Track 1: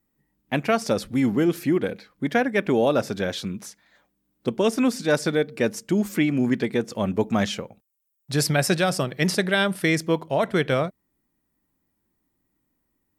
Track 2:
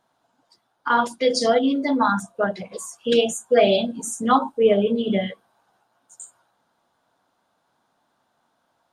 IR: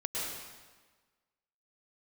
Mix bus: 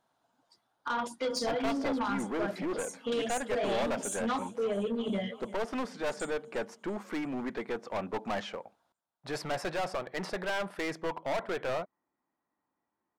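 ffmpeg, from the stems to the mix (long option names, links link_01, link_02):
-filter_complex "[0:a]bandpass=frequency=910:width_type=q:width=1.5:csg=0,aeval=exprs='clip(val(0),-1,0.0178)':channel_layout=same,adelay=950,volume=2.5dB[link_01];[1:a]acompressor=threshold=-19dB:ratio=4,volume=-6.5dB,asplit=2[link_02][link_03];[link_03]volume=-19.5dB,aecho=0:1:343|686|1029|1372|1715|2058|2401|2744|3087:1|0.58|0.336|0.195|0.113|0.0656|0.0381|0.0221|0.0128[link_04];[link_01][link_02][link_04]amix=inputs=3:normalize=0,asoftclip=type=tanh:threshold=-25.5dB"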